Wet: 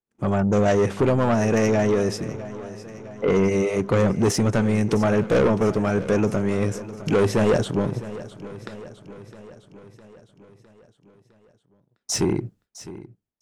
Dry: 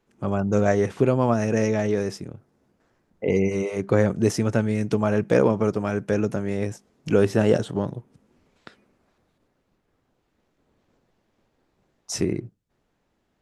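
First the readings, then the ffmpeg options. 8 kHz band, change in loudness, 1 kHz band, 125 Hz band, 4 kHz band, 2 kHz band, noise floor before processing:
+5.0 dB, +1.5 dB, +3.0 dB, +2.0 dB, +5.0 dB, +2.5 dB, -72 dBFS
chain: -af "asoftclip=type=tanh:threshold=-20dB,agate=range=-30dB:threshold=-59dB:ratio=16:detection=peak,aecho=1:1:658|1316|1974|2632|3290|3948:0.158|0.0935|0.0552|0.0326|0.0192|0.0113,volume=6dB"

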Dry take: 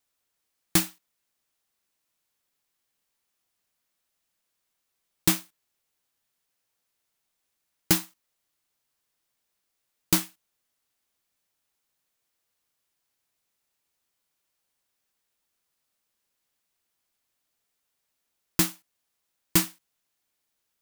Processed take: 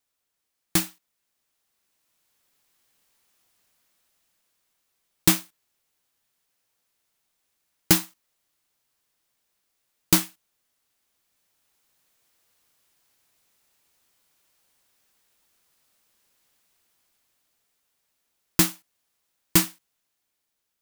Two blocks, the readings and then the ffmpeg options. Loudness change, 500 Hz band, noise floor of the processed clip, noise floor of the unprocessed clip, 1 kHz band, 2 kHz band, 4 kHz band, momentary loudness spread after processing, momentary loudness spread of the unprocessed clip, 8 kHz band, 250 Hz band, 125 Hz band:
+3.0 dB, +3.0 dB, -80 dBFS, -80 dBFS, +3.0 dB, +3.0 dB, +3.0 dB, 7 LU, 7 LU, +3.0 dB, +3.0 dB, +3.0 dB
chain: -af "dynaudnorm=f=310:g=9:m=11.5dB,volume=-1dB"

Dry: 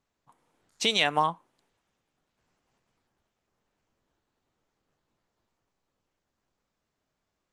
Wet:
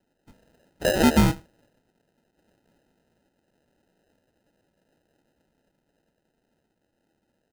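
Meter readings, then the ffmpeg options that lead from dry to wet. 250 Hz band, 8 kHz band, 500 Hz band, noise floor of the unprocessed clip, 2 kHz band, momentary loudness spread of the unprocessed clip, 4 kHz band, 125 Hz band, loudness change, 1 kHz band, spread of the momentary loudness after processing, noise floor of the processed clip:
+16.5 dB, +4.5 dB, +7.5 dB, -82 dBFS, +0.5 dB, 5 LU, -5.5 dB, +16.5 dB, +4.0 dB, -2.0 dB, 11 LU, -76 dBFS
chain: -filter_complex "[0:a]equalizer=f=330:t=o:w=2.6:g=8.5,afreqshift=160,asoftclip=type=tanh:threshold=-17.5dB,highpass=f=170:w=0.5412,highpass=f=170:w=1.3066,equalizer=f=400:t=q:w=4:g=-7,equalizer=f=910:t=q:w=4:g=8,equalizer=f=2.6k:t=q:w=4:g=-8,lowpass=f=3.9k:w=0.5412,lowpass=f=3.9k:w=1.3066,asplit=2[a][b];[b]adelay=93.29,volume=-25dB,highshelf=f=4k:g=-2.1[c];[a][c]amix=inputs=2:normalize=0,acrusher=samples=39:mix=1:aa=0.000001,volume=3.5dB"

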